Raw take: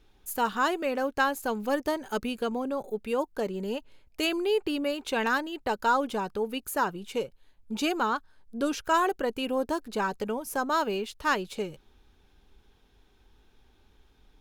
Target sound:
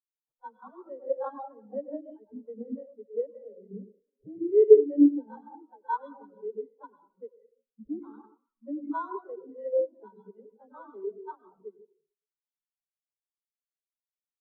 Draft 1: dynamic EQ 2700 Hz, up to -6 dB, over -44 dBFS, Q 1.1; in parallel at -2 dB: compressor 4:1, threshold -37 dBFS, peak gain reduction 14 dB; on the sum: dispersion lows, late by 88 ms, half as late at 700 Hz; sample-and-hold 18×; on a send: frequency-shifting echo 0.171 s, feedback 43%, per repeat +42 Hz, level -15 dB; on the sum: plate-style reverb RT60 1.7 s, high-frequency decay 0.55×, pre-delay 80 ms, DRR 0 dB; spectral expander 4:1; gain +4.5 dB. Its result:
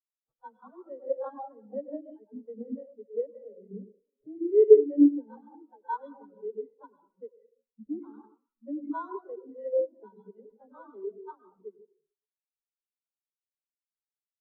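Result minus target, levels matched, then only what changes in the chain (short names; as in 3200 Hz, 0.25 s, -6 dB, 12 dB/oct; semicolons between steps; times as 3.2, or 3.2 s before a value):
2000 Hz band -3.0 dB
change: dynamic EQ 9600 Hz, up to -6 dB, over -44 dBFS, Q 1.1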